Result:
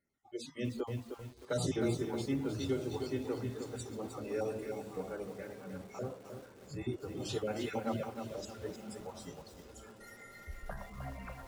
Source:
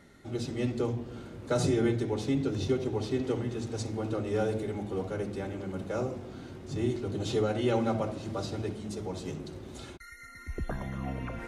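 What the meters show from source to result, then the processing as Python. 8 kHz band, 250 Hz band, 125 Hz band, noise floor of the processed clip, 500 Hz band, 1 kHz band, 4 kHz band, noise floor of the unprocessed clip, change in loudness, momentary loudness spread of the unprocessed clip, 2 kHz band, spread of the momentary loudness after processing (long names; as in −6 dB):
−3.5 dB, −7.0 dB, −8.5 dB, −57 dBFS, −7.0 dB, −6.5 dB, −5.0 dB, −48 dBFS, −7.0 dB, 15 LU, −5.5 dB, 14 LU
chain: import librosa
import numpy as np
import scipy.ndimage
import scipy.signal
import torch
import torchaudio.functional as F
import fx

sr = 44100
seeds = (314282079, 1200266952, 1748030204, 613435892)

p1 = fx.spec_dropout(x, sr, seeds[0], share_pct=27)
p2 = fx.high_shelf(p1, sr, hz=3500.0, db=6.0)
p3 = fx.hum_notches(p2, sr, base_hz=50, count=4)
p4 = fx.noise_reduce_blind(p3, sr, reduce_db=23)
p5 = p4 + fx.echo_diffused(p4, sr, ms=1154, feedback_pct=51, wet_db=-15, dry=0)
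p6 = fx.echo_crushed(p5, sr, ms=309, feedback_pct=35, bits=8, wet_db=-6.5)
y = p6 * librosa.db_to_amplitude(-6.0)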